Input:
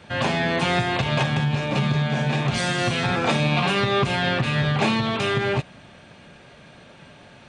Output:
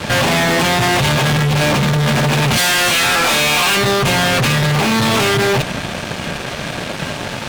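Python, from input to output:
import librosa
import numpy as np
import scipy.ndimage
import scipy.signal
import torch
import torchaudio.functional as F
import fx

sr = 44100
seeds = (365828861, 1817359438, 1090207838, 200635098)

y = fx.highpass(x, sr, hz=1300.0, slope=6, at=(2.57, 3.77))
y = fx.over_compress(y, sr, threshold_db=-26.0, ratio=-1.0)
y = fx.fuzz(y, sr, gain_db=39.0, gate_db=-46.0)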